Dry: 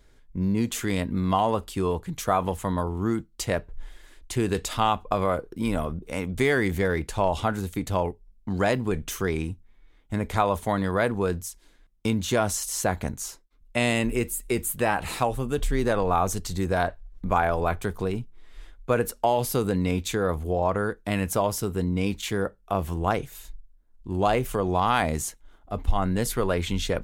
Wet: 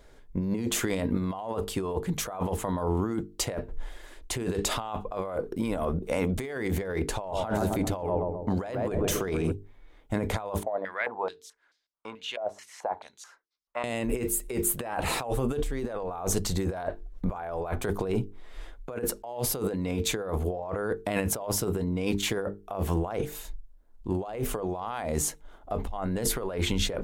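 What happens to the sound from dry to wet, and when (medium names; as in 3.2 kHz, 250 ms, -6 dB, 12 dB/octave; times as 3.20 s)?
7.11–9.52 s: filtered feedback delay 131 ms, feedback 60%, low-pass 820 Hz, level -7.5 dB
10.63–13.84 s: step-sequenced band-pass 4.6 Hz 630–5000 Hz
whole clip: peaking EQ 600 Hz +7.5 dB 1.9 oct; hum notches 50/100/150/200/250/300/350/400/450 Hz; compressor with a negative ratio -27 dBFS, ratio -1; trim -3 dB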